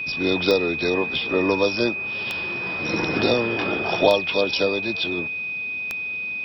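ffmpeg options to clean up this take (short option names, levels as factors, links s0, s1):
-af "adeclick=t=4,bandreject=f=2500:w=30"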